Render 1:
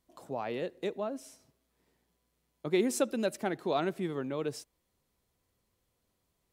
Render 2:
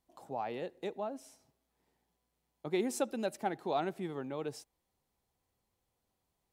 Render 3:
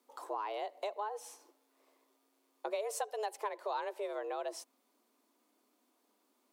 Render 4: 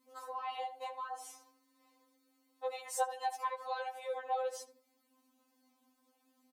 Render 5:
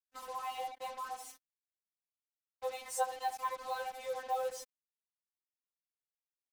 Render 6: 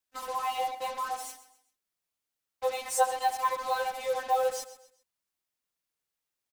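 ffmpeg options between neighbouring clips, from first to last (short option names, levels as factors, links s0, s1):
-af "equalizer=f=810:t=o:w=0.33:g=9,volume=0.562"
-af "acompressor=threshold=0.00708:ratio=4,afreqshift=210,volume=2.24"
-filter_complex "[0:a]asplit=2[s0][s1];[s1]adelay=79,lowpass=f=1400:p=1,volume=0.316,asplit=2[s2][s3];[s3]adelay=79,lowpass=f=1400:p=1,volume=0.4,asplit=2[s4][s5];[s5]adelay=79,lowpass=f=1400:p=1,volume=0.4,asplit=2[s6][s7];[s7]adelay=79,lowpass=f=1400:p=1,volume=0.4[s8];[s2][s4][s6][s8]amix=inputs=4:normalize=0[s9];[s0][s9]amix=inputs=2:normalize=0,afftfilt=real='re*3.46*eq(mod(b,12),0)':imag='im*3.46*eq(mod(b,12),0)':win_size=2048:overlap=0.75,volume=1.33"
-af "acrusher=bits=7:mix=0:aa=0.5"
-af "aecho=1:1:130|260|390:0.178|0.064|0.023,volume=2.66"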